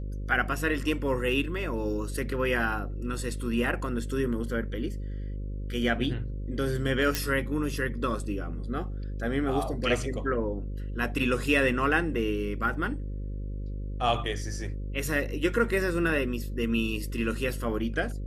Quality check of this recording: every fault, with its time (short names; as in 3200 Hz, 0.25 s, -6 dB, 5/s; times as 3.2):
buzz 50 Hz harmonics 11 -34 dBFS
7.15 pop -9 dBFS